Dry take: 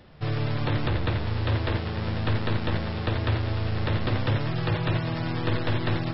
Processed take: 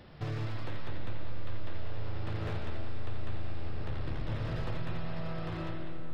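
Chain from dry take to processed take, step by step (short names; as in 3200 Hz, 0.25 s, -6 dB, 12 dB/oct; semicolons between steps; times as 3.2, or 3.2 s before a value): ending faded out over 1.28 s; darkening echo 0.121 s, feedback 68%, level -14.5 dB; 3.68–4.3 ring modulator 37 Hz; reverb RT60 5.0 s, pre-delay 65 ms, DRR 1 dB; compressor 2.5:1, threshold -35 dBFS, peak gain reduction 18.5 dB; slew limiter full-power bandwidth 20 Hz; gain -1 dB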